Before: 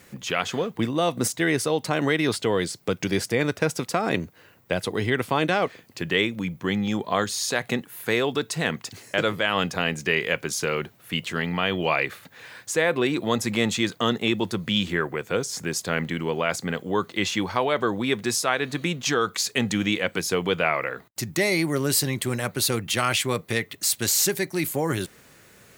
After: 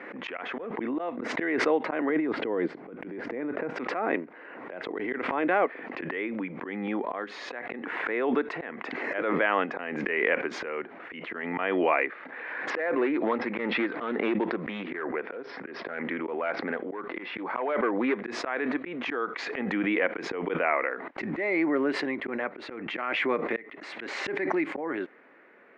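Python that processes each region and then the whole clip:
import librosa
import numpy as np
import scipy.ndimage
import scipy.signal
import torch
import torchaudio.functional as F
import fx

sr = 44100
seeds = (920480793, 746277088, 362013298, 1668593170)

y = fx.chain(x, sr, fx.tilt_eq(slope=-3.0),
    fx.over_compress(threshold_db=-22.0, ratio=-0.5), at=(2.09, 3.73))
y = fx.chain(y, sr, fx.cheby1_lowpass(hz=5400.0, order=6),
    fx.overload_stage(gain_db=18.5),
    fx.doppler_dist(depth_ms=0.13), at=(12.7, 18.22))
y = scipy.signal.sosfilt(scipy.signal.ellip(3, 1.0, 80, [270.0, 2100.0], 'bandpass', fs=sr, output='sos'), y)
y = fx.auto_swell(y, sr, attack_ms=252.0)
y = fx.pre_swell(y, sr, db_per_s=25.0)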